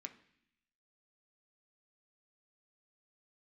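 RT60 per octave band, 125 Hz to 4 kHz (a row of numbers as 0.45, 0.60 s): 0.95, 0.95, 0.65, 0.65, 0.95, 1.0 s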